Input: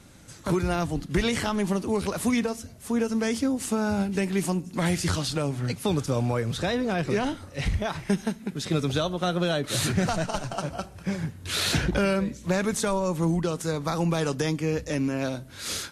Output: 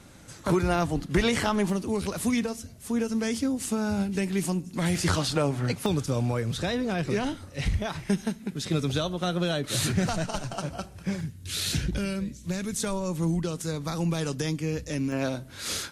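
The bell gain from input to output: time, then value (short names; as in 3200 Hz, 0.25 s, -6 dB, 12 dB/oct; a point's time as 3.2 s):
bell 860 Hz 2.7 oct
+2.5 dB
from 1.7 s -4.5 dB
from 4.95 s +4.5 dB
from 5.86 s -3.5 dB
from 11.21 s -15 dB
from 12.8 s -7 dB
from 15.12 s +0.5 dB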